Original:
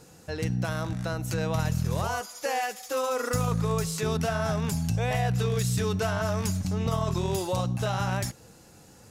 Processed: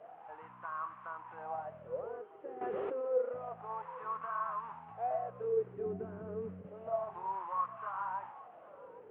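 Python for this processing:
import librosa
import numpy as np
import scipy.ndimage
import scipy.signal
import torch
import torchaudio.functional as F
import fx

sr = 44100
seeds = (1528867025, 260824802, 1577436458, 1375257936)

y = fx.delta_mod(x, sr, bps=16000, step_db=-35.0)
y = fx.dynamic_eq(y, sr, hz=1300.0, q=1.7, threshold_db=-48.0, ratio=4.0, max_db=7)
y = fx.wah_lfo(y, sr, hz=0.29, low_hz=380.0, high_hz=1100.0, q=12.0)
y = fx.low_shelf_res(y, sr, hz=280.0, db=7.5, q=1.5, at=(5.86, 6.67))
y = y + 10.0 ** (-21.0 / 20.0) * np.pad(y, (int(804 * sr / 1000.0), 0))[:len(y)]
y = fx.env_flatten(y, sr, amount_pct=100, at=(2.61, 3.08))
y = y * librosa.db_to_amplitude(2.5)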